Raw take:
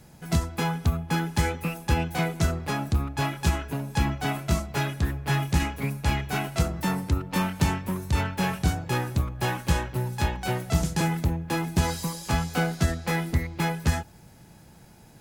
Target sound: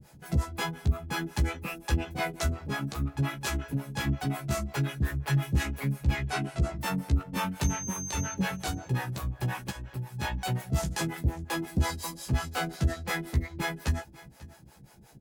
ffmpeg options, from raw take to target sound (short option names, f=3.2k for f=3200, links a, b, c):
-filter_complex "[0:a]asettb=1/sr,asplit=3[a][b][c];[a]atrim=end=6.234[d];[b]atrim=start=6.23:end=6.76,asetpts=PTS-STARTPTS,afade=t=in:d=0.004:c=qsin,afade=t=out:st=0.526:d=0.004:c=qsin,lowpass=f=10k:w=0.5412,lowpass=f=10k:w=1.3066[e];[c]atrim=start=6.756[f];[d][e]acrossfade=d=0.004:c1=hsin:c2=qsin[g];[g][f]acrossfade=d=0.004:c1=qsin:c2=hsin,asplit=3[h][i][j];[h]afade=t=out:st=9.69:d=0.02[k];[i]acompressor=threshold=-31dB:ratio=10,afade=t=in:st=9.69:d=0.02,afade=t=out:st=10.18:d=0.02[l];[j]afade=t=in:st=10.18:d=0.02[m];[k][l][m]amix=inputs=3:normalize=0,acrossover=split=410[n][o];[n]aeval=exprs='val(0)*(1-1/2+1/2*cos(2*PI*5.6*n/s))':c=same[p];[o]aeval=exprs='val(0)*(1-1/2-1/2*cos(2*PI*5.6*n/s))':c=same[q];[p][q]amix=inputs=2:normalize=0,asettb=1/sr,asplit=3[r][s][t];[r]atrim=end=7.644[u];[s]atrim=start=7.64:end=8.33,asetpts=PTS-STARTPTS,afade=t=in:d=0.004:c=qsin,afade=t=out:st=0.686:d=0.004:c=qsin,aeval=exprs='val(0)+0.0316*sin(2*PI*6300*n/s)':c=same[v];[t]atrim=start=8.326[w];[u][v]acrossfade=d=0.004:c1=hsin:c2=qsin[x];[x][w]acrossfade=d=0.004:c1=qsin:c2=hsin,asoftclip=type=tanh:threshold=-18.5dB,asplit=2[y][z];[z]adelay=15,volume=-5dB[aa];[y][aa]amix=inputs=2:normalize=0,aecho=1:1:542:0.1"